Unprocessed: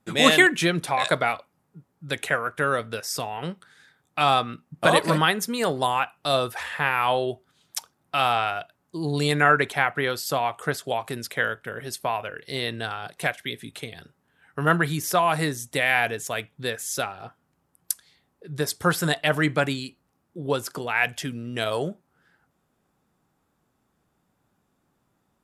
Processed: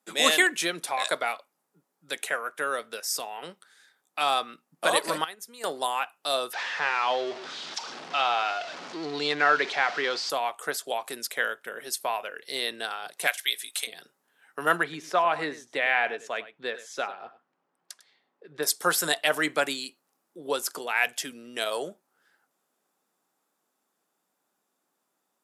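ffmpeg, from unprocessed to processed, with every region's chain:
-filter_complex "[0:a]asettb=1/sr,asplit=3[s0][s1][s2];[s0]atrim=end=5.244[s3];[s1]atrim=start=5.24:end=5.64,asetpts=PTS-STARTPTS,afade=t=in:d=0.004:c=qsin,afade=t=out:st=0.396:d=0.004:c=qsin,agate=range=0.282:threshold=0.0501:ratio=16:release=100:detection=peak,acompressor=threshold=0.0141:ratio=2.5:attack=3.2:release=140:knee=1:detection=peak[s4];[s2]atrim=start=5.636[s5];[s3][s4]acrossfade=d=0.004:c1=hsin:c2=qsin[s6];[s6][s5]acrossfade=d=0.004:c1=qsin:c2=hsin,asettb=1/sr,asplit=3[s7][s8][s9];[s7]atrim=end=6.534[s10];[s8]atrim=start=6.53:end=10.3,asetpts=PTS-STARTPTS,afade=t=in:d=0.004:c=qsin,afade=t=out:st=3.766:d=0.004:c=qsin,aeval=exprs='val(0)+0.5*0.0422*sgn(val(0))':c=same,lowpass=f=5000:w=0.5412,lowpass=f=5000:w=1.3066[s11];[s9]atrim=start=10.296[s12];[s10][s11]acrossfade=d=0.004:c1=hsin:c2=qsin[s13];[s13][s12]acrossfade=d=0.004:c1=qsin:c2=hsin,asettb=1/sr,asplit=3[s14][s15][s16];[s14]atrim=end=13.274[s17];[s15]atrim=start=13.27:end=13.87,asetpts=PTS-STARTPTS,afade=t=in:d=0.004:c=qsin,afade=t=out:st=0.596:d=0.004:c=qsin,deesser=0.4,highpass=660,highshelf=f=2200:g=9[s18];[s16]atrim=start=13.866[s19];[s17][s18]acrossfade=d=0.004:c1=hsin:c2=qsin[s20];[s20][s19]acrossfade=d=0.004:c1=qsin:c2=hsin,asettb=1/sr,asplit=3[s21][s22][s23];[s21]atrim=end=14.834[s24];[s22]atrim=start=14.83:end=18.63,asetpts=PTS-STARTPTS,afade=t=in:d=0.004:c=qsin,afade=t=out:st=3.796:d=0.004:c=qsin,lowpass=2600,aecho=1:1:100:0.168,atrim=end_sample=167580[s25];[s23]atrim=start=18.626[s26];[s24][s25]acrossfade=d=0.004:c1=hsin:c2=qsin[s27];[s27][s26]acrossfade=d=0.004:c1=qsin:c2=hsin,highpass=f=170:w=0.5412,highpass=f=170:w=1.3066,bass=f=250:g=-15,treble=f=4000:g=7,dynaudnorm=f=790:g=13:m=3.76,volume=0.562"

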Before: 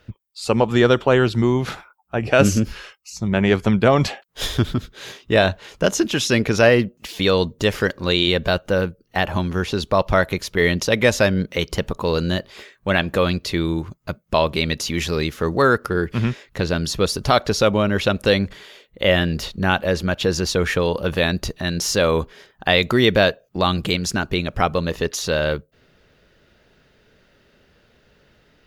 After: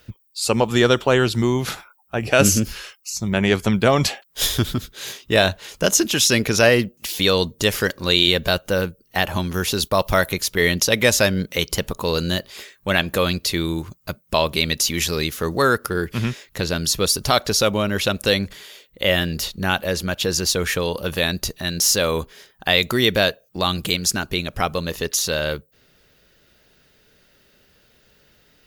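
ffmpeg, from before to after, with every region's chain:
-filter_complex "[0:a]asettb=1/sr,asplit=3[s0][s1][s2];[s0]atrim=end=9.544[s3];[s1]atrim=start=9.54:end=10.29,asetpts=PTS-STARTPTS,afade=t=in:d=0.004:c=qsin,afade=t=out:st=0.746:d=0.004:c=qsin,agate=range=0.0224:threshold=0.0251:ratio=3:release=100:detection=peak,highshelf=f=11000:g=11.5,acompressor=mode=upward:threshold=0.0794:ratio=2.5:attack=3.2:release=140:knee=2.83:detection=peak[s4];[s2]atrim=start=10.286[s5];[s3][s4]acrossfade=d=0.004:c1=hsin:c2=qsin[s6];[s6][s5]acrossfade=d=0.004:c1=qsin:c2=hsin,aemphasis=mode=production:type=75kf,dynaudnorm=f=710:g=17:m=3.76,volume=0.891"

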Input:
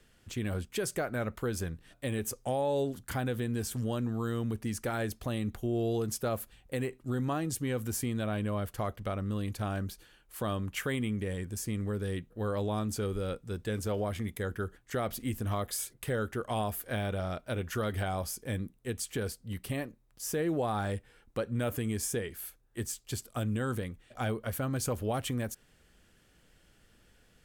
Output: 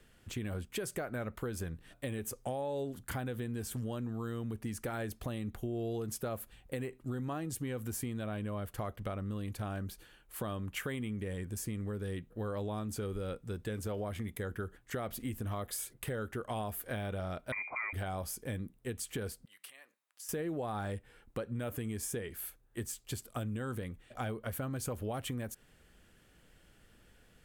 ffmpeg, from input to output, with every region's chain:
-filter_complex "[0:a]asettb=1/sr,asplit=3[s0][s1][s2];[s0]atrim=end=17.524[s3];[s1]atrim=start=17.52:end=17.93,asetpts=PTS-STARTPTS,afade=t=in:d=0.004:c=qsin,afade=t=out:st=0.406:d=0.004:c=qsin,bandreject=f=60:t=h:w=6,bandreject=f=120:t=h:w=6,bandreject=f=180:t=h:w=6,bandreject=f=240:t=h:w=6,bandreject=f=300:t=h:w=6,bandreject=f=360:t=h:w=6,bandreject=f=420:t=h:w=6,lowpass=f=2100:t=q:w=0.5098,lowpass=f=2100:t=q:w=0.6013,lowpass=f=2100:t=q:w=0.9,lowpass=f=2100:t=q:w=2.563,afreqshift=-2500[s4];[s2]atrim=start=17.926[s5];[s3][s4]acrossfade=d=0.004:c1=hsin:c2=qsin[s6];[s6][s5]acrossfade=d=0.004:c1=qsin:c2=hsin,asettb=1/sr,asplit=3[s7][s8][s9];[s7]atrim=end=19.454[s10];[s8]atrim=start=19.45:end=20.29,asetpts=PTS-STARTPTS,afade=t=in:d=0.004:c=qsin,afade=t=out:st=0.836:d=0.004:c=qsin,equalizer=f=14000:t=o:w=0.25:g=-9,acompressor=threshold=0.00708:ratio=8:attack=3.2:release=140:knee=1:detection=peak,highpass=1200[s11];[s9]atrim=start=20.286[s12];[s10][s11]acrossfade=d=0.004:c1=hsin:c2=qsin[s13];[s13][s12]acrossfade=d=0.004:c1=qsin:c2=hsin,equalizer=f=5400:w=1.2:g=-4,acompressor=threshold=0.0141:ratio=3,volume=1.12"

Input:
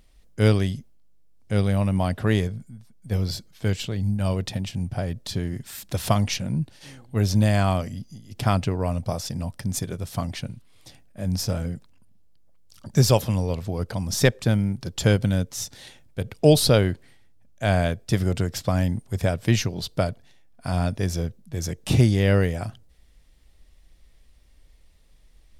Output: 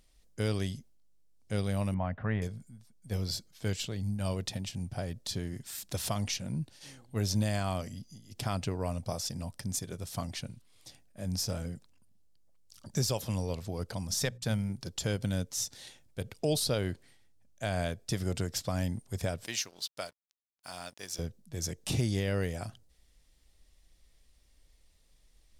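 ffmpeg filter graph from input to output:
-filter_complex "[0:a]asettb=1/sr,asplit=3[s0][s1][s2];[s0]atrim=end=1.944[s3];[s1]atrim=start=1.94:end=2.42,asetpts=PTS-STARTPTS,afade=t=in:d=0.004:c=qsin,afade=t=out:st=0.476:d=0.004:c=qsin,lowpass=f=2100:w=0.5412,lowpass=f=2100:w=1.3066,equalizer=f=360:t=o:w=0.54:g=-12.5[s4];[s2]atrim=start=2.416[s5];[s3][s4]acrossfade=d=0.004:c1=hsin:c2=qsin[s6];[s6][s5]acrossfade=d=0.004:c1=qsin:c2=hsin,asettb=1/sr,asplit=3[s7][s8][s9];[s7]atrim=end=14.074[s10];[s8]atrim=start=14.07:end=14.7,asetpts=PTS-STARTPTS,afade=t=in:d=0.004:c=qsin,afade=t=out:st=0.626:d=0.004:c=qsin,agate=range=0.0891:threshold=0.01:ratio=16:release=100:detection=peak,equalizer=f=340:w=2.5:g=-8,bandreject=f=60:t=h:w=6,bandreject=f=120:t=h:w=6,bandreject=f=180:t=h:w=6,bandreject=f=240:t=h:w=6,bandreject=f=300:t=h:w=6[s11];[s9]atrim=start=14.696[s12];[s10][s11]acrossfade=d=0.004:c1=hsin:c2=qsin[s13];[s13][s12]acrossfade=d=0.004:c1=qsin:c2=hsin,asettb=1/sr,asplit=3[s14][s15][s16];[s14]atrim=end=19.464[s17];[s15]atrim=start=19.46:end=21.19,asetpts=PTS-STARTPTS,afade=t=in:d=0.004:c=qsin,afade=t=out:st=1.726:d=0.004:c=qsin,highpass=f=1300:p=1,aeval=exprs='sgn(val(0))*max(abs(val(0))-0.00282,0)':c=same[s18];[s16]atrim=start=21.186[s19];[s17][s18]acrossfade=d=0.004:c1=hsin:c2=qsin[s20];[s20][s19]acrossfade=d=0.004:c1=qsin:c2=hsin,bass=f=250:g=-2,treble=f=4000:g=9,alimiter=limit=0.266:level=0:latency=1:release=165,highshelf=f=10000:g=-7.5,volume=0.422"

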